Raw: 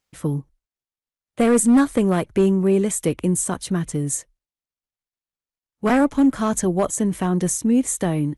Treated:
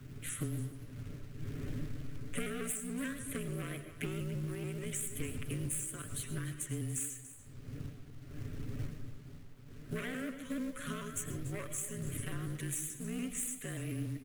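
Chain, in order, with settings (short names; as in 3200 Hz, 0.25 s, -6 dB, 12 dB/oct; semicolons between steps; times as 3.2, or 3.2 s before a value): one diode to ground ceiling -25 dBFS; wind noise 180 Hz -32 dBFS; tilt shelf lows -7 dB, about 1400 Hz; compressor 12:1, threshold -33 dBFS, peak gain reduction 19 dB; fixed phaser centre 2100 Hz, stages 4; granular stretch 1.7×, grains 32 ms; companded quantiser 6-bit; frequency shift -22 Hz; echo 0.287 s -15 dB; on a send at -9 dB: reverb RT60 0.60 s, pre-delay 65 ms; on the sum: shaped vibrato saw up 6.9 Hz, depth 100 cents; gain +1 dB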